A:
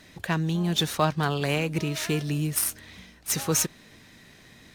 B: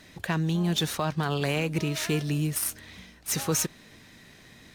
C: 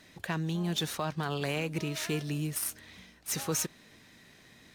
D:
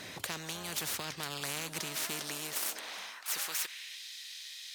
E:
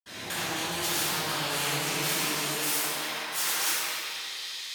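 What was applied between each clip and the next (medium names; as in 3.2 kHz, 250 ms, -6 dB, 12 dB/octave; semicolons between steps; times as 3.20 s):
peak limiter -15.5 dBFS, peak gain reduction 7.5 dB
bass shelf 110 Hz -5.5 dB; trim -4.5 dB
high-pass sweep 120 Hz -> 3.7 kHz, 1.58–4.04 s; spectrum-flattening compressor 4:1
reverberation RT60 2.7 s, pre-delay 59 ms; trim +9 dB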